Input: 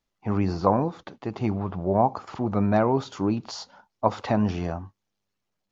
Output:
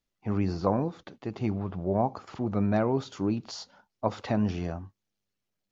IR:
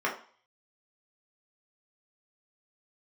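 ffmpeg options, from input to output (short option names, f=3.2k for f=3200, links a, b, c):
-af "equalizer=f=940:t=o:w=1:g=-5.5,volume=-3dB"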